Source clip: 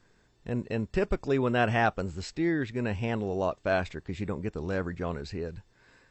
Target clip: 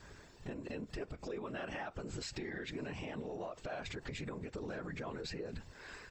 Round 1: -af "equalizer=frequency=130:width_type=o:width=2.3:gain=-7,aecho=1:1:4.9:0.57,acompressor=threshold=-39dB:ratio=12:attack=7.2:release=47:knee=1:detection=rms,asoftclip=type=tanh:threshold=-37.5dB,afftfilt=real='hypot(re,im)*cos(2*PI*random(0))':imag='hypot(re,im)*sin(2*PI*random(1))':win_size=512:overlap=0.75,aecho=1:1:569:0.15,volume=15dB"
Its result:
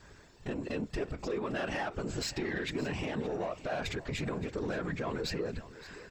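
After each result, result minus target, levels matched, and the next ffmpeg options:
downward compressor: peak gain reduction −9.5 dB; echo-to-direct +11.5 dB
-af "equalizer=frequency=130:width_type=o:width=2.3:gain=-7,aecho=1:1:4.9:0.57,acompressor=threshold=-49.5dB:ratio=12:attack=7.2:release=47:knee=1:detection=rms,asoftclip=type=tanh:threshold=-37.5dB,afftfilt=real='hypot(re,im)*cos(2*PI*random(0))':imag='hypot(re,im)*sin(2*PI*random(1))':win_size=512:overlap=0.75,aecho=1:1:569:0.15,volume=15dB"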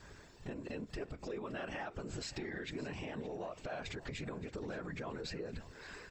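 echo-to-direct +11.5 dB
-af "equalizer=frequency=130:width_type=o:width=2.3:gain=-7,aecho=1:1:4.9:0.57,acompressor=threshold=-49.5dB:ratio=12:attack=7.2:release=47:knee=1:detection=rms,asoftclip=type=tanh:threshold=-37.5dB,afftfilt=real='hypot(re,im)*cos(2*PI*random(0))':imag='hypot(re,im)*sin(2*PI*random(1))':win_size=512:overlap=0.75,aecho=1:1:569:0.0398,volume=15dB"

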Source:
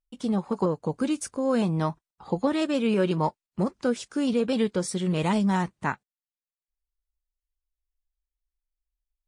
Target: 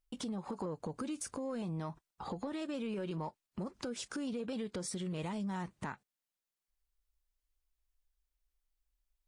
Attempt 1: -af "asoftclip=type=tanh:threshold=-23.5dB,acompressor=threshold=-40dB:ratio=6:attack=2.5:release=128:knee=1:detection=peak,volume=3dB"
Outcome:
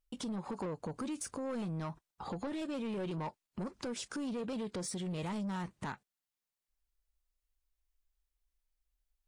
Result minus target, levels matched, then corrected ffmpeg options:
soft clipping: distortion +16 dB
-af "asoftclip=type=tanh:threshold=-12dB,acompressor=threshold=-40dB:ratio=6:attack=2.5:release=128:knee=1:detection=peak,volume=3dB"

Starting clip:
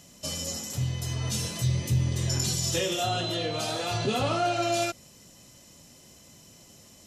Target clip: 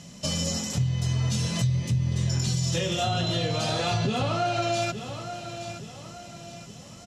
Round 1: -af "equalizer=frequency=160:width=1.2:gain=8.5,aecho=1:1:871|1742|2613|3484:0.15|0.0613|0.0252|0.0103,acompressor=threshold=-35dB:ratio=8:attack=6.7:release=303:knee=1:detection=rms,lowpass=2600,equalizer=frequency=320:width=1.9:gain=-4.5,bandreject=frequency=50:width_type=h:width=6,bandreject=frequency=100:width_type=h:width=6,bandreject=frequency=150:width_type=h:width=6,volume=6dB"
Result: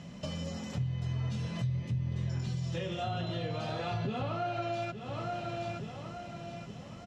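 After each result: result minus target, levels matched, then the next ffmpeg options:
8,000 Hz band −12.5 dB; downward compressor: peak gain reduction +8 dB
-af "equalizer=frequency=160:width=1.2:gain=8.5,aecho=1:1:871|1742|2613|3484:0.15|0.0613|0.0252|0.0103,acompressor=threshold=-35dB:ratio=8:attack=6.7:release=303:knee=1:detection=rms,lowpass=6900,equalizer=frequency=320:width=1.9:gain=-4.5,bandreject=frequency=50:width_type=h:width=6,bandreject=frequency=100:width_type=h:width=6,bandreject=frequency=150:width_type=h:width=6,volume=6dB"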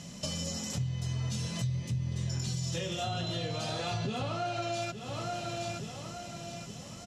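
downward compressor: peak gain reduction +8 dB
-af "equalizer=frequency=160:width=1.2:gain=8.5,aecho=1:1:871|1742|2613|3484:0.15|0.0613|0.0252|0.0103,acompressor=threshold=-26dB:ratio=8:attack=6.7:release=303:knee=1:detection=rms,lowpass=6900,equalizer=frequency=320:width=1.9:gain=-4.5,bandreject=frequency=50:width_type=h:width=6,bandreject=frequency=100:width_type=h:width=6,bandreject=frequency=150:width_type=h:width=6,volume=6dB"

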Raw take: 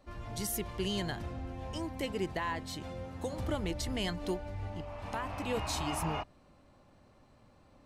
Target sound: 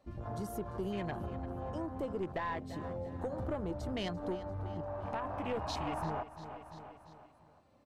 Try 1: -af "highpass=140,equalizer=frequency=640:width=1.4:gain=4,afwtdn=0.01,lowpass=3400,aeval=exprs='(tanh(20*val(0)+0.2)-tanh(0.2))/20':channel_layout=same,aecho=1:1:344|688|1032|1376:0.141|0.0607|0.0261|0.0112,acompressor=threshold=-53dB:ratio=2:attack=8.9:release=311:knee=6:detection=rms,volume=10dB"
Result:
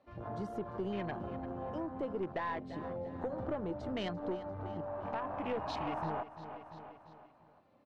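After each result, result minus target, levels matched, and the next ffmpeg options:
125 Hz band −3.5 dB; 4,000 Hz band −2.5 dB
-af "highpass=66,equalizer=frequency=640:width=1.4:gain=4,afwtdn=0.01,lowpass=3400,aeval=exprs='(tanh(20*val(0)+0.2)-tanh(0.2))/20':channel_layout=same,aecho=1:1:344|688|1032|1376:0.141|0.0607|0.0261|0.0112,acompressor=threshold=-53dB:ratio=2:attack=8.9:release=311:knee=6:detection=rms,volume=10dB"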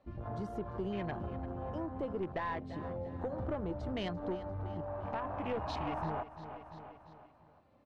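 4,000 Hz band −3.0 dB
-af "highpass=66,equalizer=frequency=640:width=1.4:gain=4,afwtdn=0.01,aeval=exprs='(tanh(20*val(0)+0.2)-tanh(0.2))/20':channel_layout=same,aecho=1:1:344|688|1032|1376:0.141|0.0607|0.0261|0.0112,acompressor=threshold=-53dB:ratio=2:attack=8.9:release=311:knee=6:detection=rms,volume=10dB"

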